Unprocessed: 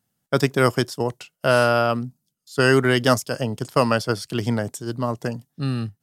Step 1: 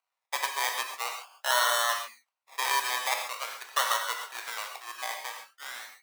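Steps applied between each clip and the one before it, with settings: decimation with a swept rate 25×, swing 60% 0.44 Hz; HPF 850 Hz 24 dB/oct; non-linear reverb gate 0.16 s flat, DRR 3 dB; gain -5 dB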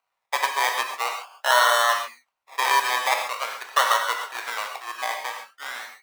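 high shelf 3400 Hz -8.5 dB; gain +9 dB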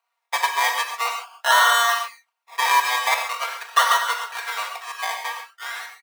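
HPF 640 Hz 12 dB/oct; comb 4.3 ms, depth 84%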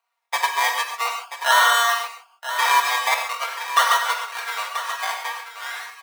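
echo 0.984 s -11 dB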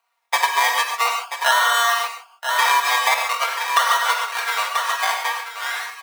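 compressor, threshold -19 dBFS, peak gain reduction 8 dB; gain +5.5 dB

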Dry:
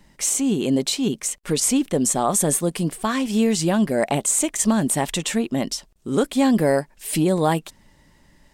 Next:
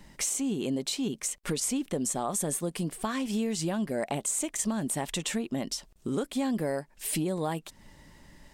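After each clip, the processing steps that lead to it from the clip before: compressor 3:1, threshold -33 dBFS, peak gain reduction 14 dB; gain +1.5 dB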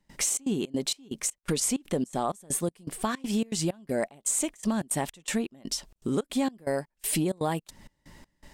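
step gate ".xxx.xx.xx..xx." 162 bpm -24 dB; gain +3 dB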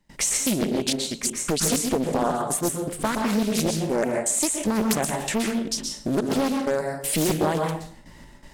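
plate-style reverb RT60 0.59 s, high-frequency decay 0.7×, pre-delay 0.11 s, DRR 1 dB; Doppler distortion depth 0.76 ms; gain +4 dB

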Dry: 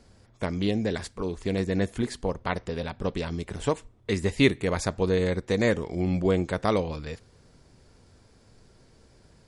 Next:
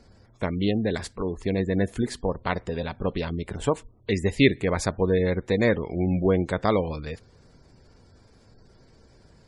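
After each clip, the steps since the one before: spectral gate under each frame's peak -30 dB strong; gain +2 dB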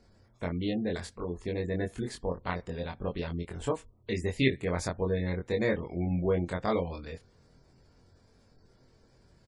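doubler 23 ms -3 dB; gain -8.5 dB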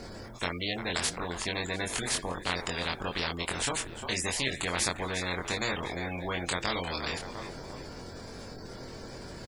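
frequency-shifting echo 0.35 s, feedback 41%, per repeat -50 Hz, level -22 dB; spectral compressor 4:1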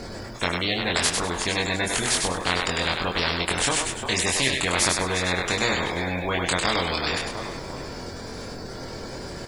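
thinning echo 0.1 s, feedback 27%, level -4 dB; gain +7 dB

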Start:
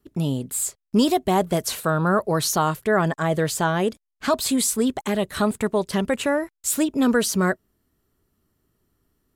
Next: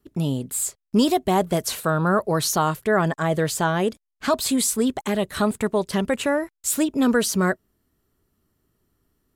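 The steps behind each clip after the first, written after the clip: nothing audible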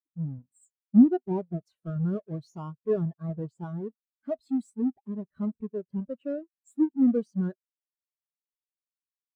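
half-waves squared off; spectral expander 2.5:1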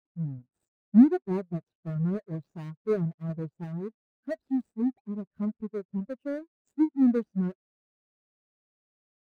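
median filter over 41 samples

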